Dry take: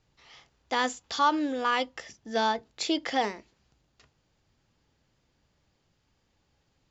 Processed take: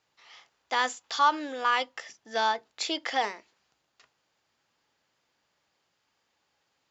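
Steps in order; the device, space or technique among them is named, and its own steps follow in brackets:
filter by subtraction (in parallel: low-pass filter 1,100 Hz 12 dB per octave + polarity inversion)

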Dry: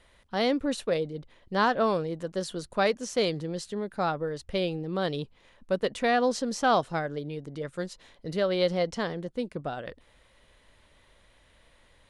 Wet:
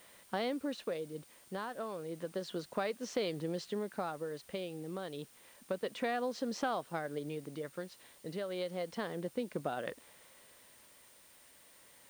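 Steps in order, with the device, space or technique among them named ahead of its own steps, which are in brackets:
medium wave at night (band-pass filter 180–4,300 Hz; downward compressor, threshold −33 dBFS, peak gain reduction 14 dB; amplitude tremolo 0.31 Hz, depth 49%; steady tone 9,000 Hz −66 dBFS; white noise bed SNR 23 dB)
level +1 dB

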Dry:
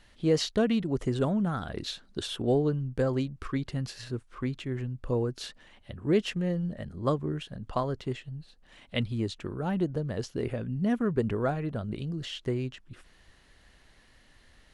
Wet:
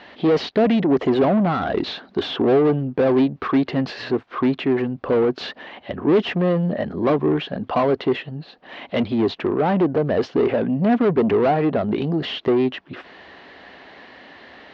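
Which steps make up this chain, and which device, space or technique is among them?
overdrive pedal into a guitar cabinet (mid-hump overdrive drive 29 dB, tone 1,100 Hz, clips at −13 dBFS; loudspeaker in its box 88–4,600 Hz, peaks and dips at 120 Hz −8 dB, 270 Hz +4 dB, 400 Hz +3 dB, 720 Hz +4 dB, 1,400 Hz −3 dB)
level +2.5 dB

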